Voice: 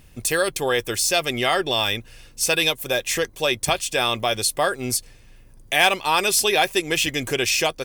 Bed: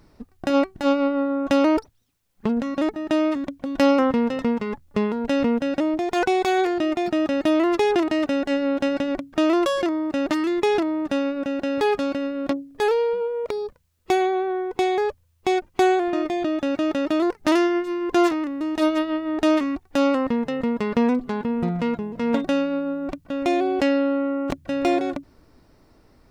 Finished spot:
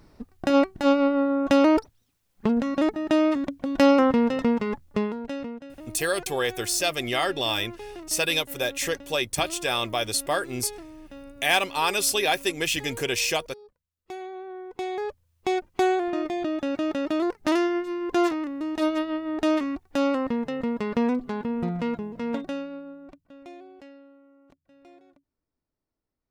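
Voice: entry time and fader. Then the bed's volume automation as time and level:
5.70 s, -4.5 dB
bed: 4.86 s 0 dB
5.75 s -20.5 dB
13.87 s -20.5 dB
15.37 s -4 dB
22.07 s -4 dB
24.21 s -32 dB

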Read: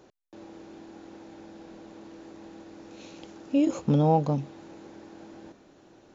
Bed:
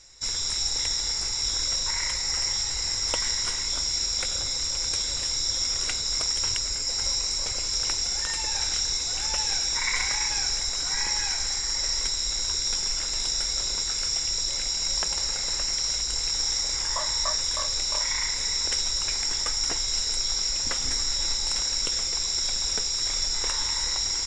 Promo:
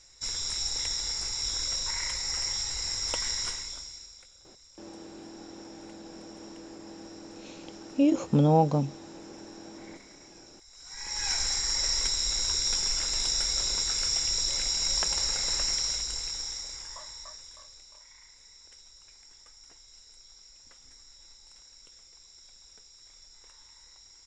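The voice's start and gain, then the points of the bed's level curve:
4.45 s, +0.5 dB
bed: 3.46 s -4.5 dB
4.32 s -28 dB
10.64 s -28 dB
11.31 s -1 dB
15.70 s -1 dB
18.01 s -27 dB

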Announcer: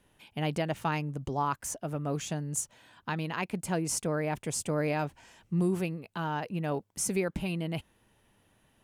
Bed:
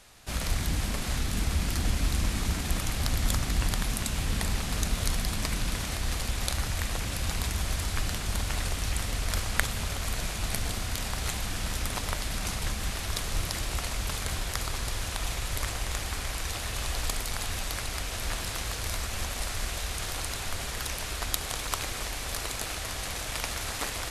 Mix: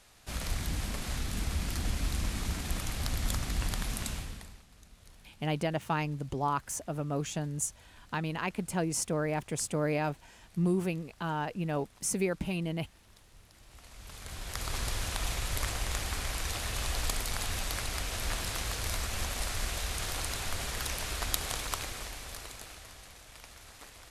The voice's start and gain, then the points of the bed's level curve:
5.05 s, -0.5 dB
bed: 4.11 s -5 dB
4.67 s -28 dB
13.51 s -28 dB
14.76 s -1.5 dB
21.51 s -1.5 dB
23.20 s -18 dB

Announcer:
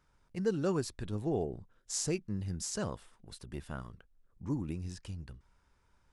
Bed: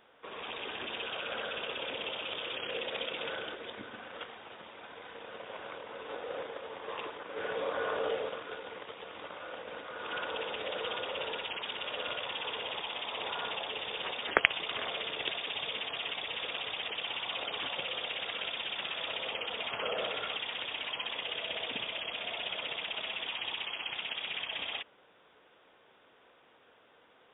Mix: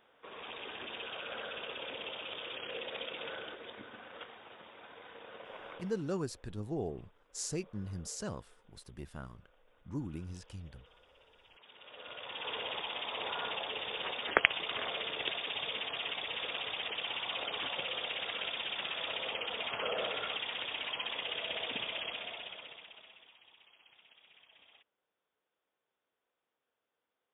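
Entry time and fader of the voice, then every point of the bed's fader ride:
5.45 s, -4.0 dB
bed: 5.77 s -4.5 dB
6.26 s -27.5 dB
11.34 s -27.5 dB
12.53 s -1 dB
22.06 s -1 dB
23.40 s -25 dB

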